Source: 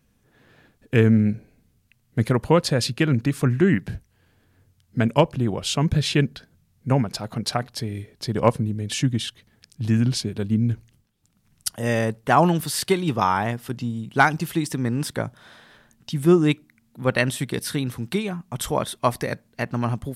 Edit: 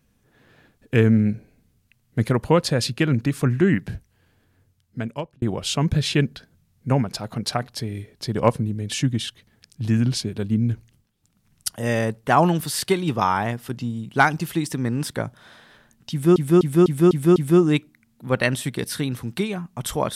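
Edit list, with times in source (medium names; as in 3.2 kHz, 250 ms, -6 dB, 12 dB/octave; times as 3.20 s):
3.95–5.42 s: fade out equal-power
16.11–16.36 s: loop, 6 plays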